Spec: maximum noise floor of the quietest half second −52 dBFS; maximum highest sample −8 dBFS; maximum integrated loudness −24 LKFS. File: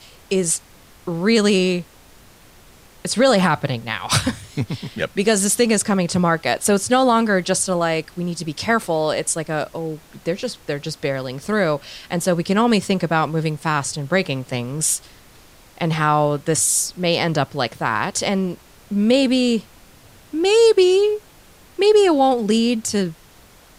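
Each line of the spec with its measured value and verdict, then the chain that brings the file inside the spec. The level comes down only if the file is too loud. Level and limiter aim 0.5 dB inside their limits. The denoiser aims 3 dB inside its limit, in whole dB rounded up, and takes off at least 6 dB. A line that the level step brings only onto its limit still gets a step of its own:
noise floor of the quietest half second −48 dBFS: out of spec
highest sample −5.5 dBFS: out of spec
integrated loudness −19.5 LKFS: out of spec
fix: level −5 dB

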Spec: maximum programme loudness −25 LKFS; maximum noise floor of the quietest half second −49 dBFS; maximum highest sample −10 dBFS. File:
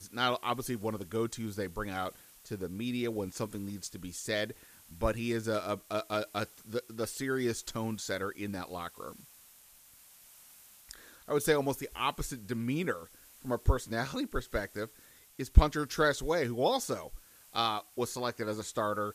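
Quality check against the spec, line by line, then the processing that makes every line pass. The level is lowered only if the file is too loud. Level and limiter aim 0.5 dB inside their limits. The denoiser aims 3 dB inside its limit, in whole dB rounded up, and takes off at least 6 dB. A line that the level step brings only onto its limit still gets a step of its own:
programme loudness −34.0 LKFS: in spec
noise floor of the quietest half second −59 dBFS: in spec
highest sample −6.5 dBFS: out of spec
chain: brickwall limiter −10.5 dBFS

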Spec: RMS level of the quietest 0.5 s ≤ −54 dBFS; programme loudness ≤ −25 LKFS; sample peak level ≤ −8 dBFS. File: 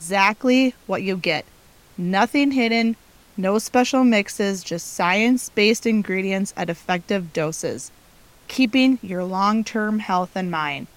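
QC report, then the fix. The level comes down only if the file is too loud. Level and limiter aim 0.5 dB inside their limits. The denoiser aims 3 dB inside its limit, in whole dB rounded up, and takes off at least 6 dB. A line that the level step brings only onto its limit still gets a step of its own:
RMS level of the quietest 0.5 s −51 dBFS: out of spec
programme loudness −20.5 LKFS: out of spec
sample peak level −3.5 dBFS: out of spec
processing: level −5 dB

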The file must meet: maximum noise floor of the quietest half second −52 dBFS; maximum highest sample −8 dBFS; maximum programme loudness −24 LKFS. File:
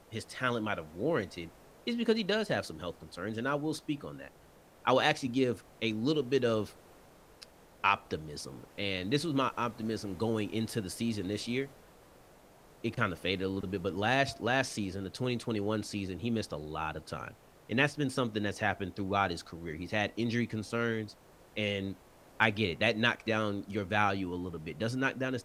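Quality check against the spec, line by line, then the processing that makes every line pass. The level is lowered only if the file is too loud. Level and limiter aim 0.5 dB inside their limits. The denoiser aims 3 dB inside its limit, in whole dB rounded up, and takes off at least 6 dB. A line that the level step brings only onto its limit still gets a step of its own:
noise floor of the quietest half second −59 dBFS: in spec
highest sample −9.0 dBFS: in spec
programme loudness −33.0 LKFS: in spec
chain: no processing needed

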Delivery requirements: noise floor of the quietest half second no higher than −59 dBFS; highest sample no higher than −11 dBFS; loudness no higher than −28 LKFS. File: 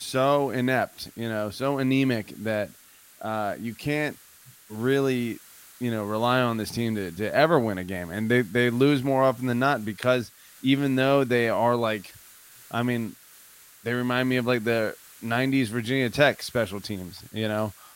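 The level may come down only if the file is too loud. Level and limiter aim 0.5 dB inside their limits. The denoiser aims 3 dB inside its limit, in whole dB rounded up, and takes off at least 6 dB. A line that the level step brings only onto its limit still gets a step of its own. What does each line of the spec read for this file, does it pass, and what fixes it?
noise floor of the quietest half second −53 dBFS: out of spec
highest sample −6.0 dBFS: out of spec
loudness −25.5 LKFS: out of spec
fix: broadband denoise 6 dB, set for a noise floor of −53 dBFS
level −3 dB
brickwall limiter −11.5 dBFS

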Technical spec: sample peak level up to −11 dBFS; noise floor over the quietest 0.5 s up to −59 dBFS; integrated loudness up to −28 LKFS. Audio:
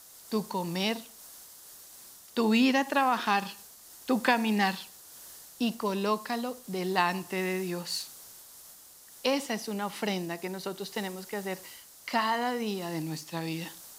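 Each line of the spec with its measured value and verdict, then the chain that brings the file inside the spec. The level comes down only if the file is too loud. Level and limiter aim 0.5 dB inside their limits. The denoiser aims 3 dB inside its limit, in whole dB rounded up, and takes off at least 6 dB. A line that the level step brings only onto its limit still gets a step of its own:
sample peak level −9.0 dBFS: out of spec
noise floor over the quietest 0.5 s −52 dBFS: out of spec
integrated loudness −30.5 LKFS: in spec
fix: broadband denoise 10 dB, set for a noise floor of −52 dBFS
brickwall limiter −11.5 dBFS

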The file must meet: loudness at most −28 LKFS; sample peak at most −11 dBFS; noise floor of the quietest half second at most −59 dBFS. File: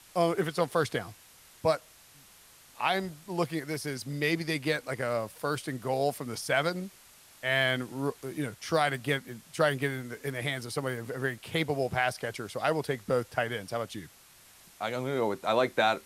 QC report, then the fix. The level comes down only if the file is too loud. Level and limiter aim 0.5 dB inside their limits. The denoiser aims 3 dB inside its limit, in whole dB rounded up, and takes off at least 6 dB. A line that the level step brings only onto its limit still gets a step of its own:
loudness −31.0 LKFS: in spec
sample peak −12.0 dBFS: in spec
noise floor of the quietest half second −57 dBFS: out of spec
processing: broadband denoise 6 dB, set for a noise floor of −57 dBFS

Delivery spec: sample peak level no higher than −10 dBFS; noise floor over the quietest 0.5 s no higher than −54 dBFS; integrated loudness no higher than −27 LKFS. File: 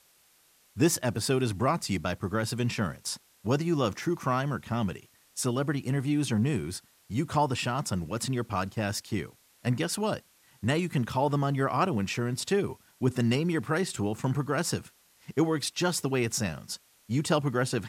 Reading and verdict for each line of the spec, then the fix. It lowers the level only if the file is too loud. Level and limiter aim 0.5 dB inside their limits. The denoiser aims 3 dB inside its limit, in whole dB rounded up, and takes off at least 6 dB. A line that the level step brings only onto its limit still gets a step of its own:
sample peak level −12.0 dBFS: in spec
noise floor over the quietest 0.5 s −63 dBFS: in spec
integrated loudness −29.5 LKFS: in spec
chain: no processing needed

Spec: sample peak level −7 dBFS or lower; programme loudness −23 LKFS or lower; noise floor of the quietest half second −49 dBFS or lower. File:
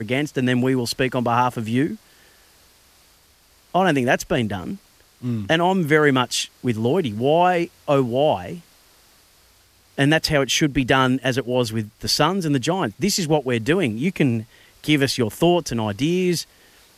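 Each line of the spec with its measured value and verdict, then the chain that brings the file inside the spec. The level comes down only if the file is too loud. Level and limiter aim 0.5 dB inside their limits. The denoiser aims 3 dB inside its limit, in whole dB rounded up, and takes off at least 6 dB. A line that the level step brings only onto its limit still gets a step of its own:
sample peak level −3.5 dBFS: out of spec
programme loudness −20.5 LKFS: out of spec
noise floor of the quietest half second −56 dBFS: in spec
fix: level −3 dB
brickwall limiter −7.5 dBFS

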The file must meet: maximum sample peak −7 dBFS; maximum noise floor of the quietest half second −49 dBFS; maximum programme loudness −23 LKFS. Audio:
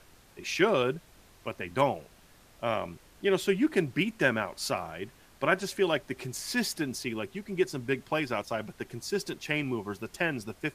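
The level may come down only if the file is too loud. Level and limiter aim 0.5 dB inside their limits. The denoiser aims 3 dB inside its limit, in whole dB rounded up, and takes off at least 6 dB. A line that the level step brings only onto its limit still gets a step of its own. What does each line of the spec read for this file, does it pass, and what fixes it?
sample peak −10.0 dBFS: in spec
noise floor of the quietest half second −57 dBFS: in spec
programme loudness −30.5 LKFS: in spec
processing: no processing needed

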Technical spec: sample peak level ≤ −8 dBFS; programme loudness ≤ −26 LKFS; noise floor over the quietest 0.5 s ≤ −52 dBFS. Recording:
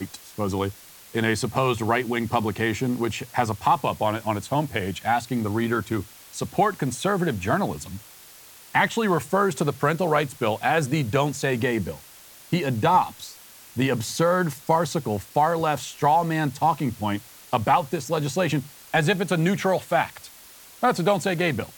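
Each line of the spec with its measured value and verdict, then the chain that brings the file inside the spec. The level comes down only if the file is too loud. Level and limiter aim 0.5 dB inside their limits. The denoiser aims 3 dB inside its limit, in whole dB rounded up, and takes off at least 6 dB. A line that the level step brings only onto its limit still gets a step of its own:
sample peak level −7.5 dBFS: out of spec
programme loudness −24.0 LKFS: out of spec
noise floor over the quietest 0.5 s −48 dBFS: out of spec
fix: broadband denoise 6 dB, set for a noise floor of −48 dBFS
level −2.5 dB

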